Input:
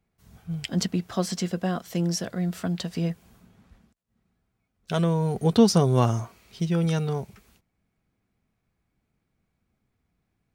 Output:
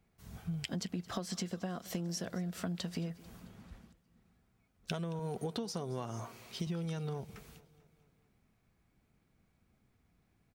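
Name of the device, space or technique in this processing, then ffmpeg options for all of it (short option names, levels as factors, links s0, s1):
serial compression, leveller first: -filter_complex "[0:a]asettb=1/sr,asplit=3[s0][s1][s2];[s0]atrim=end=5.194[s3];[s1]atrim=start=5.19:end=6.67,asetpts=PTS-STARTPTS,afade=t=in:d=0.004:c=qsin,afade=t=out:st=1.476:d=0.004:c=qsin,highpass=f=230:p=1[s4];[s2]atrim=start=6.666[s5];[s3][s4]acrossfade=d=0.004:c1=hsin:c2=qsin[s6];[s6][s5]acrossfade=d=0.004:c1=qsin:c2=hsin,acompressor=threshold=0.0562:ratio=3,acompressor=threshold=0.0126:ratio=6,aecho=1:1:221|442|663|884|1105:0.1|0.058|0.0336|0.0195|0.0113,volume=1.33"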